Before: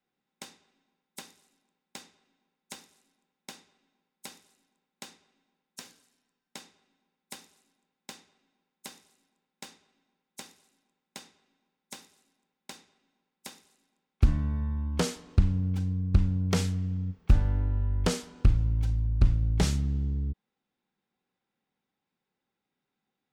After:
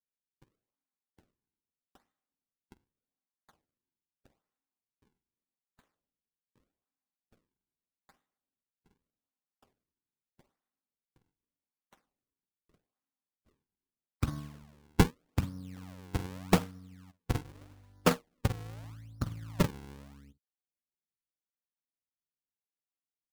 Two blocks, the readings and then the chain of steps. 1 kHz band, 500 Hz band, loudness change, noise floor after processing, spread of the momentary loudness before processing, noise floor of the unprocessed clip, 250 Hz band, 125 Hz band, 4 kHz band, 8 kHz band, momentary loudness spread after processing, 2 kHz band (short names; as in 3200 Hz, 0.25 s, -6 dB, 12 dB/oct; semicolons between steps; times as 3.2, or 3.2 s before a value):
+4.0 dB, +1.0 dB, -5.0 dB, under -85 dBFS, 22 LU, under -85 dBFS, -2.0 dB, -9.0 dB, -4.0 dB, -5.5 dB, 20 LU, +1.5 dB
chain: in parallel at -3.5 dB: one-sided clip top -21.5 dBFS, bottom -13 dBFS; on the sum: doubler 47 ms -8 dB; treble ducked by the level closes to 3000 Hz, closed at -22 dBFS; speaker cabinet 160–5100 Hz, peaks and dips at 200 Hz -5 dB, 380 Hz -8 dB, 1200 Hz +6 dB, 2600 Hz -9 dB; decimation with a swept rate 41×, swing 160% 0.82 Hz; upward expander 2.5:1, over -43 dBFS; gain +5.5 dB